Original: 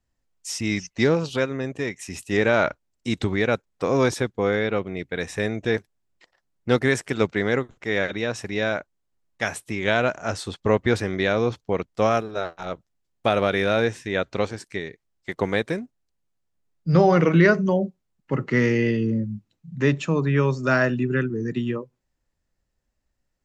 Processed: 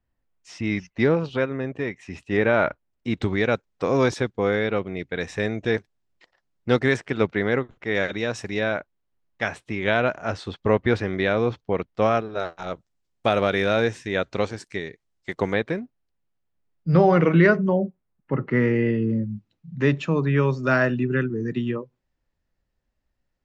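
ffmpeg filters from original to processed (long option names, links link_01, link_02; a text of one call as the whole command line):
ffmpeg -i in.wav -af "asetnsamples=nb_out_samples=441:pad=0,asendcmd='3.22 lowpass f 5700;6.97 lowpass f 3500;7.95 lowpass f 8200;8.59 lowpass f 3700;12.4 lowpass f 8600;15.53 lowpass f 3400;17.57 lowpass f 2000;19.1 lowpass f 4500',lowpass=2700" out.wav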